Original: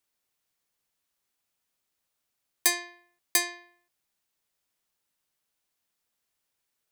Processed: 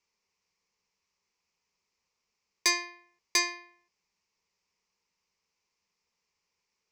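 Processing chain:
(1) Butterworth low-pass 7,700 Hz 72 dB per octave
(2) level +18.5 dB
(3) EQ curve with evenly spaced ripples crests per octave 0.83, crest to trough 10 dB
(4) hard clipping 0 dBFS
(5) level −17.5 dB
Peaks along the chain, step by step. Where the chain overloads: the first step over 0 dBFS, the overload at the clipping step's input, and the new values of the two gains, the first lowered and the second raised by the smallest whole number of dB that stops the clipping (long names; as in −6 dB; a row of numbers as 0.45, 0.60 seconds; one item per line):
−13.5, +5.0, +7.5, 0.0, −17.5 dBFS
step 2, 7.5 dB
step 2 +10.5 dB, step 5 −9.5 dB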